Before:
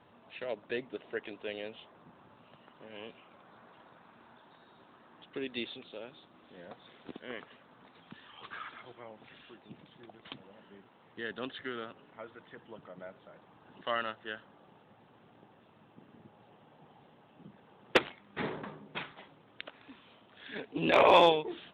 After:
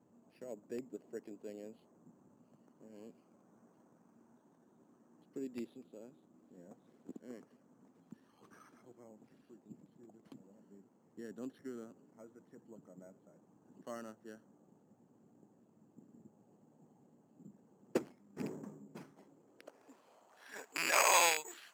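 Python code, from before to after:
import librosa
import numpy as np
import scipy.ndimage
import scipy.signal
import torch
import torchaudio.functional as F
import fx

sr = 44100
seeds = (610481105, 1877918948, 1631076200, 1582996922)

y = fx.rattle_buzz(x, sr, strikes_db=-38.0, level_db=-17.0)
y = (np.kron(scipy.signal.resample_poly(y, 1, 6), np.eye(6)[0]) * 6)[:len(y)]
y = fx.filter_sweep_bandpass(y, sr, from_hz=240.0, to_hz=1700.0, start_s=19.1, end_s=21.06, q=1.4)
y = y * 10.0 ** (-1.0 / 20.0)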